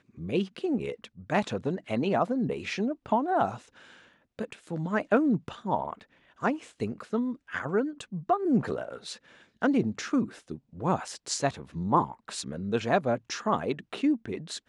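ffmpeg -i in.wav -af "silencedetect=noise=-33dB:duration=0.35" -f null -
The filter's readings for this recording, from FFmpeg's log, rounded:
silence_start: 3.56
silence_end: 4.39 | silence_duration: 0.83
silence_start: 5.93
silence_end: 6.42 | silence_duration: 0.49
silence_start: 9.13
silence_end: 9.62 | silence_duration: 0.49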